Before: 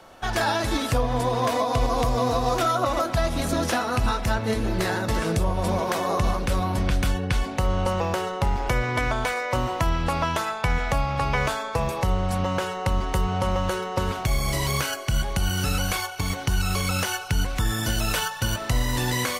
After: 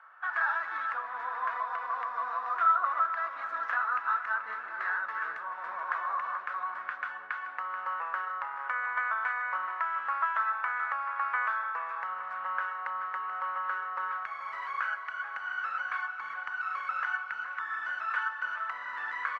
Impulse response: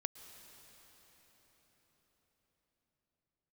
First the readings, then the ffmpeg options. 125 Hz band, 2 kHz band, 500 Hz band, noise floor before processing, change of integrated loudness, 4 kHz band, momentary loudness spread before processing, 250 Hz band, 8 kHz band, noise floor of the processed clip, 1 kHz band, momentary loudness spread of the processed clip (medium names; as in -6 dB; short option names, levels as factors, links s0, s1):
under -40 dB, -1.0 dB, -24.0 dB, -33 dBFS, -7.5 dB, under -20 dB, 3 LU, under -35 dB, under -35 dB, -42 dBFS, -3.5 dB, 7 LU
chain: -af "asuperpass=centerf=1400:order=4:qfactor=2.2,aecho=1:1:433|866|1299|1732|2165|2598:0.251|0.133|0.0706|0.0374|0.0198|0.0105,volume=1.19"